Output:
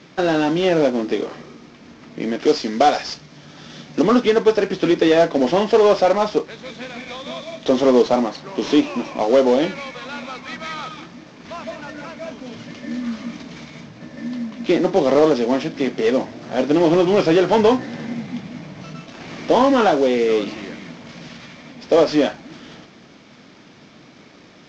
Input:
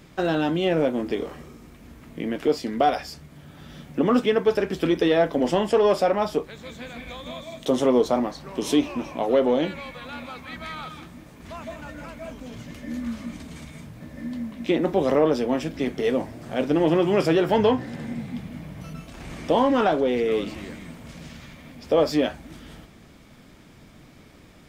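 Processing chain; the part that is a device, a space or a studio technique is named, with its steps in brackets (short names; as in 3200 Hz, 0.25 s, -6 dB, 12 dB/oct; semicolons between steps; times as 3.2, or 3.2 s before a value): early wireless headset (HPF 180 Hz 12 dB/oct; CVSD 32 kbps); 2.42–4.02 bell 5500 Hz +5.5 dB 1.4 oct; gain +6 dB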